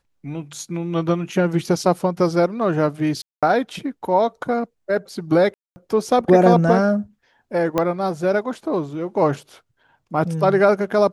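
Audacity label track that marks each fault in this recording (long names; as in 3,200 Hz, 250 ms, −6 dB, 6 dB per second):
3.220000	3.430000	drop-out 206 ms
5.540000	5.760000	drop-out 220 ms
7.780000	7.780000	click −7 dBFS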